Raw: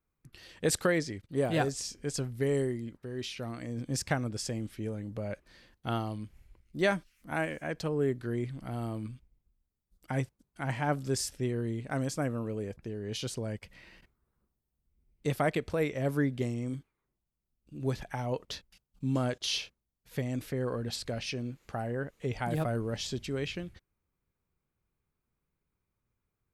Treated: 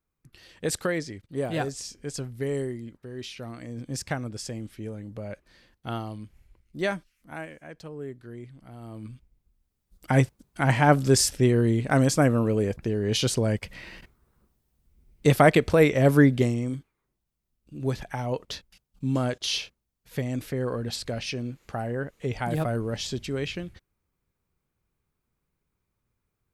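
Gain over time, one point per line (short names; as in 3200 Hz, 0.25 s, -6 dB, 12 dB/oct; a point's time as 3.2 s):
6.87 s 0 dB
7.62 s -8 dB
8.79 s -8 dB
9.13 s +1.5 dB
10.18 s +11.5 dB
16.3 s +11.5 dB
16.78 s +4 dB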